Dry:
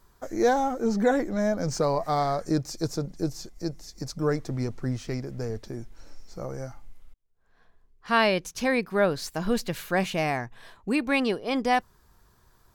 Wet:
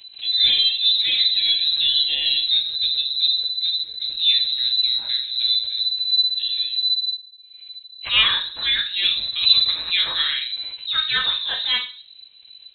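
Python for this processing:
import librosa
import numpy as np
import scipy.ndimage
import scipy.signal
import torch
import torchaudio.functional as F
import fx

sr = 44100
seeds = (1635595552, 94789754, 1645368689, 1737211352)

y = fx.room_shoebox(x, sr, seeds[0], volume_m3=33.0, walls='mixed', distance_m=0.6)
y = fx.freq_invert(y, sr, carrier_hz=4000)
y = fx.pre_swell(y, sr, db_per_s=150.0)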